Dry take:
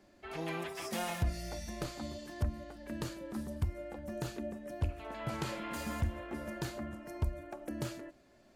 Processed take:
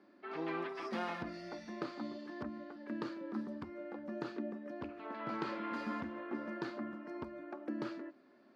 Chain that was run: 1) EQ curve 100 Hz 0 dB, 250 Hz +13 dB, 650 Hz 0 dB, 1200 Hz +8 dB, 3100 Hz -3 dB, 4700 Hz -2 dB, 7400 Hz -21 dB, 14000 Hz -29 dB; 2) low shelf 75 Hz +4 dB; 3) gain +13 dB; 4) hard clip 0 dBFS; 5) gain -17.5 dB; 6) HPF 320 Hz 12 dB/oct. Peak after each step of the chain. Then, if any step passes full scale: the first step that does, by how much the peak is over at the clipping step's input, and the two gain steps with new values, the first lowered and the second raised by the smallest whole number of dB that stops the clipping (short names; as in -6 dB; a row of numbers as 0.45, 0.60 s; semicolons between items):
-16.0, -15.5, -2.5, -2.5, -20.0, -23.5 dBFS; no overload